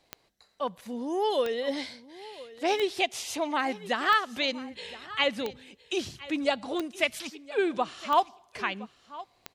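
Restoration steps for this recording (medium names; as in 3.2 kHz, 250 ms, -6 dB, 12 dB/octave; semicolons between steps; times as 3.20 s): de-click; inverse comb 1016 ms -18 dB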